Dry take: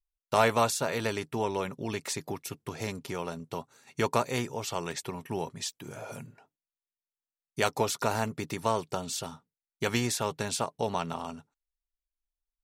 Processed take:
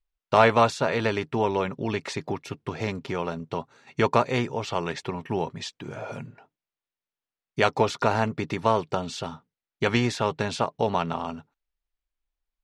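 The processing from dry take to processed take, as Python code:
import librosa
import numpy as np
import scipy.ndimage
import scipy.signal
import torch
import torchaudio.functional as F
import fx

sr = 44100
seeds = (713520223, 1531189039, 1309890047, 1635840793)

y = scipy.signal.sosfilt(scipy.signal.butter(2, 3600.0, 'lowpass', fs=sr, output='sos'), x)
y = F.gain(torch.from_numpy(y), 6.0).numpy()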